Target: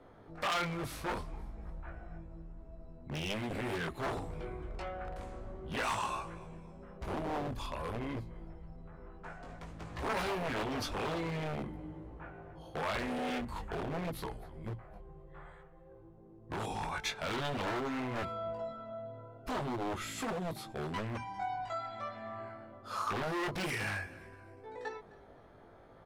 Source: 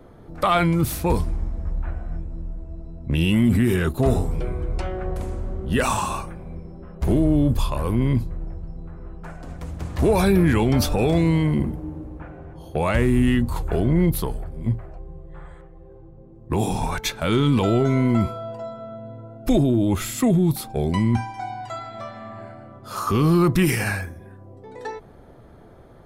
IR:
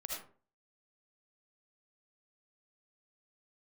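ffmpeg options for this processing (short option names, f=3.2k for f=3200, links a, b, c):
-filter_complex "[0:a]aemphasis=mode=reproduction:type=50fm,asplit=4[a][b][c][d];[b]adelay=258,afreqshift=-36,volume=-22.5dB[e];[c]adelay=516,afreqshift=-72,volume=-30.9dB[f];[d]adelay=774,afreqshift=-108,volume=-39.3dB[g];[a][e][f][g]amix=inputs=4:normalize=0,asplit=2[h][i];[i]acompressor=threshold=-30dB:ratio=6,volume=0dB[j];[h][j]amix=inputs=2:normalize=0,flanger=delay=18:depth=2.2:speed=0.49,aeval=exprs='0.126*(abs(mod(val(0)/0.126+3,4)-2)-1)':c=same,lowshelf=f=470:g=-11,volume=-6.5dB"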